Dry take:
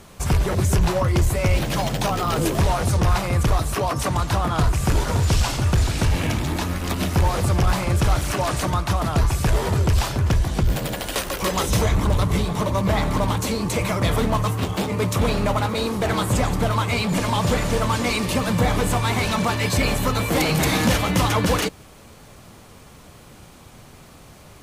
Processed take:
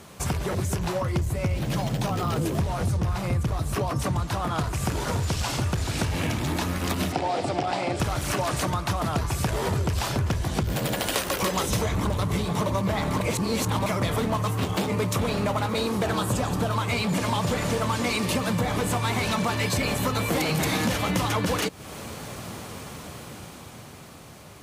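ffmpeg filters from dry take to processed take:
-filter_complex "[0:a]asettb=1/sr,asplit=3[a][b][c];[a]atrim=end=1.164[d];[b]atrim=start=1.16:end=4.27,asetpts=PTS-STARTPTS,afade=t=in:d=0.004:c=qsin,afade=t=out:st=3.106:d=0.004:c=qsin,lowshelf=f=260:g=9.5[e];[c]atrim=start=4.266[f];[d][e]acrossfade=d=0.004:c1=hsin:c2=qsin[g];[g][f]acrossfade=d=0.004:c1=qsin:c2=hsin,asettb=1/sr,asplit=3[h][i][j];[h]atrim=end=7.124[k];[i]atrim=start=7.12:end=8,asetpts=PTS-STARTPTS,afade=t=in:d=0.004:c=qsin,afade=t=out:st=0.876:d=0.004:c=qsin,highpass=200,equalizer=f=200:t=q:w=4:g=-7,equalizer=f=280:t=q:w=4:g=6,equalizer=f=730:t=q:w=4:g=9,equalizer=f=1.1k:t=q:w=4:g=-7,equalizer=f=1.6k:t=q:w=4:g=-4,equalizer=f=6.4k:t=q:w=4:g=-8,lowpass=f=7.3k:w=0.5412,lowpass=f=7.3k:w=1.3066[l];[j]atrim=start=7.996[m];[k][l]acrossfade=d=0.004:c1=hsin:c2=qsin[n];[n][m]acrossfade=d=0.004:c1=qsin:c2=hsin,asettb=1/sr,asplit=3[o][p][q];[o]atrim=end=16.054[r];[p]atrim=start=16.05:end=16.76,asetpts=PTS-STARTPTS,afade=t=in:d=0.004:c=qsin,afade=t=out:st=0.706:d=0.004:c=qsin,bandreject=f=2.1k:w=6.1[s];[q]atrim=start=16.756[t];[r][s]acrossfade=d=0.004:c1=hsin:c2=qsin[u];[u][t]acrossfade=d=0.004:c1=qsin:c2=hsin,asplit=3[v][w][x];[v]atrim=end=13.212[y];[w]atrim=start=13.208:end=13.862,asetpts=PTS-STARTPTS,areverse[z];[x]atrim=start=13.858[aa];[y][z]acrossfade=d=0.004:c1=hsin:c2=hsin[ab];[ab][aa]acrossfade=d=0.004:c1=hsin:c2=hsin,dynaudnorm=f=330:g=11:m=11.5dB,highpass=80,acompressor=threshold=-24dB:ratio=5"

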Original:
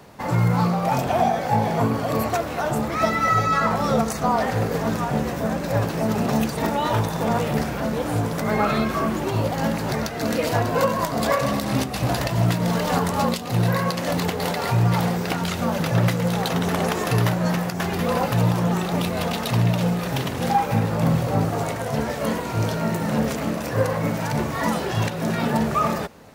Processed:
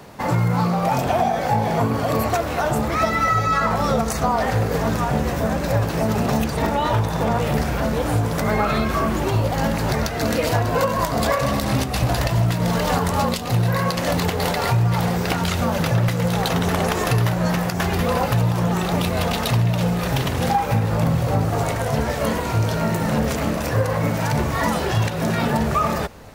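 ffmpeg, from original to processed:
-filter_complex "[0:a]asettb=1/sr,asplit=3[a][b][c];[a]atrim=end=6.444[d];[b]atrim=start=6.44:end=7.42,asetpts=PTS-STARTPTS,afade=t=in:d=0.004:c=qsin,afade=t=out:st=0.976:d=0.004:c=qsin,highshelf=f=5.2k:g=-5[e];[c]atrim=start=7.416[f];[d][e]acrossfade=d=0.004:c1=hsin:c2=qsin[g];[g][f]acrossfade=d=0.004:c1=qsin:c2=hsin,asubboost=boost=3:cutoff=97,acompressor=threshold=-21dB:ratio=3,volume=4.5dB"

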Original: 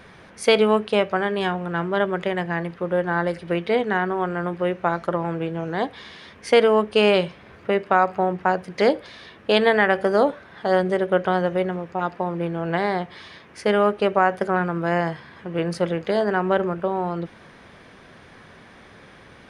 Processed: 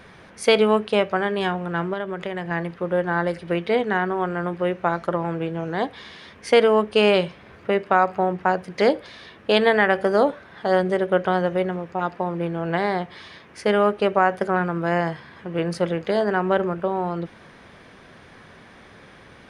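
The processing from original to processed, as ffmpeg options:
-filter_complex "[0:a]asettb=1/sr,asplit=3[a][b][c];[a]atrim=end=1.934[d];[b]atrim=start=1.93:end=2.51,asetpts=PTS-STARTPTS,afade=t=in:d=0.004:c=qsin,afade=t=out:st=0.576:d=0.004:c=qsin,acompressor=threshold=-26dB:ratio=2.5:attack=3.2:release=140:knee=1:detection=peak[e];[c]atrim=start=2.506[f];[d][e]acrossfade=d=0.004:c1=hsin:c2=qsin[g];[g][f]acrossfade=d=0.004:c1=qsin:c2=hsin"

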